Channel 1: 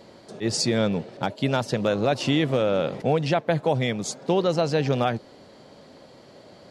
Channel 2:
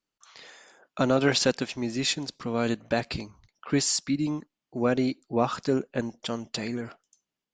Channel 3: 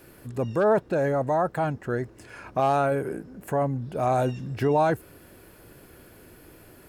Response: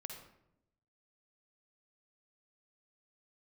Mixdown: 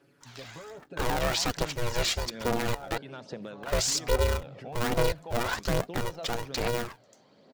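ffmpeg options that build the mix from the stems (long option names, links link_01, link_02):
-filter_complex "[0:a]adelay=1600,volume=-12dB,asplit=2[link_01][link_02];[link_02]volume=-13.5dB[link_03];[1:a]alimiter=limit=-20dB:level=0:latency=1:release=26,aeval=exprs='val(0)*sgn(sin(2*PI*240*n/s))':channel_layout=same,volume=1dB,asplit=3[link_04][link_05][link_06];[link_04]atrim=end=2.98,asetpts=PTS-STARTPTS,afade=type=out:start_time=2.976:duration=0.004:curve=hsin[link_07];[link_05]atrim=start=2.98:end=3.62,asetpts=PTS-STARTPTS,volume=0[link_08];[link_06]atrim=start=3.62,asetpts=PTS-STARTPTS,afade=type=in:duration=0.004:curve=hsin[link_09];[link_07][link_08][link_09]concat=n=3:v=0:a=1,asplit=2[link_10][link_11];[2:a]aecho=1:1:7.1:0.95,acompressor=threshold=-23dB:ratio=6,volume=-15.5dB[link_12];[link_11]apad=whole_len=366238[link_13];[link_01][link_13]sidechaincompress=threshold=-38dB:ratio=8:attack=16:release=329[link_14];[link_14][link_12]amix=inputs=2:normalize=0,highpass=150,lowpass=6300,acompressor=threshold=-40dB:ratio=6,volume=0dB[link_15];[3:a]atrim=start_sample=2205[link_16];[link_03][link_16]afir=irnorm=-1:irlink=0[link_17];[link_10][link_15][link_17]amix=inputs=3:normalize=0,aphaser=in_gain=1:out_gain=1:delay=1.7:decay=0.37:speed=1.2:type=triangular"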